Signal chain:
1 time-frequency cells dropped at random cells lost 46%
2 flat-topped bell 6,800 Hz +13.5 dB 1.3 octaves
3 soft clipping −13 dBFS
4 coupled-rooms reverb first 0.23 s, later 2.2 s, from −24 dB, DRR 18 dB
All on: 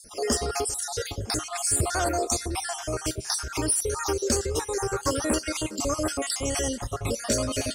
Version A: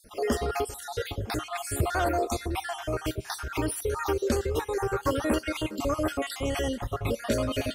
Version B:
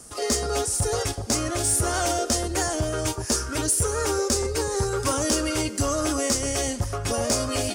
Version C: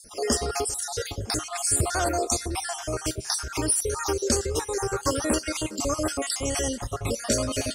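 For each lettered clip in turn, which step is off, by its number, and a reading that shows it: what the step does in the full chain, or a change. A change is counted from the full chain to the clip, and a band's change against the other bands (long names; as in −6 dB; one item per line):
2, 8 kHz band −12.5 dB
1, 125 Hz band +1.5 dB
3, distortion level −25 dB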